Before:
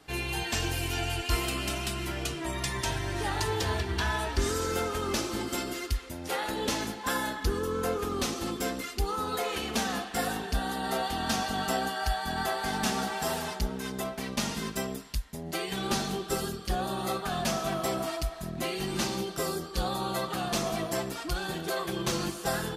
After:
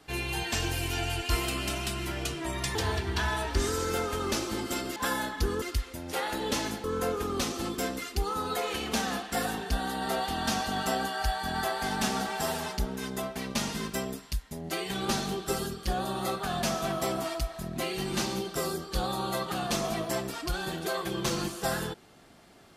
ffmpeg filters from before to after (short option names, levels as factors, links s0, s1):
-filter_complex "[0:a]asplit=5[s0][s1][s2][s3][s4];[s0]atrim=end=2.752[s5];[s1]atrim=start=3.568:end=5.782[s6];[s2]atrim=start=6.998:end=7.662[s7];[s3]atrim=start=5.778:end=7.002[s8];[s4]atrim=start=7.658[s9];[s5][s6]acrossfade=d=0.004:c1=hsin:c2=hsin[s10];[s10][s7]acrossfade=d=0.004:c1=hsin:c2=hsin[s11];[s11][s8]acrossfade=d=0.004:c1=hsin:c2=hsin[s12];[s12][s9]acrossfade=d=0.004:c1=hsin:c2=hsin"